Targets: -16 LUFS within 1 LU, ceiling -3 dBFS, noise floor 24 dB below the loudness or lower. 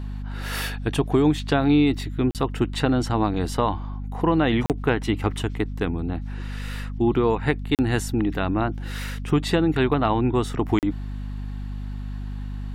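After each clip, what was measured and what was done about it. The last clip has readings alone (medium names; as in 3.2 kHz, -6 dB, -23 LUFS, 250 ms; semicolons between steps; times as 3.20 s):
dropouts 4; longest dropout 38 ms; hum 50 Hz; highest harmonic 250 Hz; hum level -28 dBFS; loudness -24.0 LUFS; peak level -7.5 dBFS; loudness target -16.0 LUFS
-> interpolate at 2.31/4.66/7.75/10.79 s, 38 ms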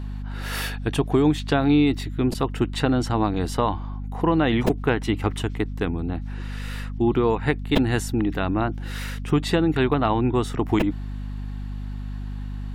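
dropouts 0; hum 50 Hz; highest harmonic 250 Hz; hum level -28 dBFS
-> de-hum 50 Hz, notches 5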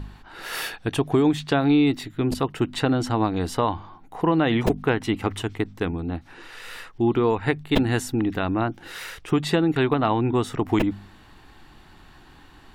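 hum not found; loudness -23.5 LUFS; peak level -6.0 dBFS; loudness target -16.0 LUFS
-> trim +7.5 dB; peak limiter -3 dBFS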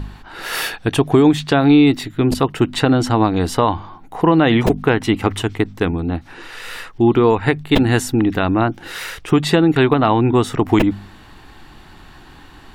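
loudness -16.5 LUFS; peak level -3.0 dBFS; noise floor -42 dBFS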